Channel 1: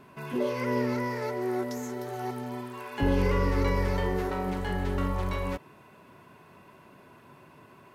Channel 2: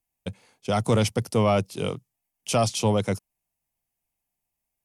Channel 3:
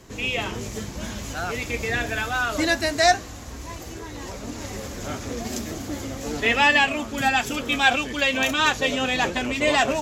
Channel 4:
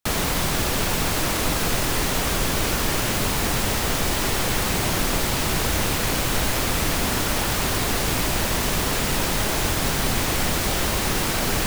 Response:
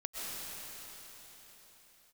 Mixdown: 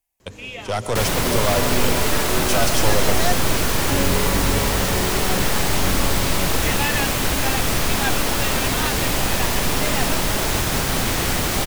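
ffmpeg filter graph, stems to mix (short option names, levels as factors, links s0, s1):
-filter_complex "[0:a]adelay=900,volume=1.26[s0];[1:a]equalizer=f=170:w=0.84:g=-12,aeval=exprs='0.251*(cos(1*acos(clip(val(0)/0.251,-1,1)))-cos(1*PI/2))+0.0355*(cos(3*acos(clip(val(0)/0.251,-1,1)))-cos(3*PI/2))+0.0447*(cos(5*acos(clip(val(0)/0.251,-1,1)))-cos(5*PI/2))+0.0282*(cos(6*acos(clip(val(0)/0.251,-1,1)))-cos(6*PI/2))':c=same,volume=0.841,asplit=2[s1][s2];[s2]volume=0.531[s3];[2:a]adelay=200,volume=0.398[s4];[3:a]adelay=900,volume=0.841,asplit=2[s5][s6];[s6]volume=0.473[s7];[4:a]atrim=start_sample=2205[s8];[s3][s7]amix=inputs=2:normalize=0[s9];[s9][s8]afir=irnorm=-1:irlink=0[s10];[s0][s1][s4][s5][s10]amix=inputs=5:normalize=0"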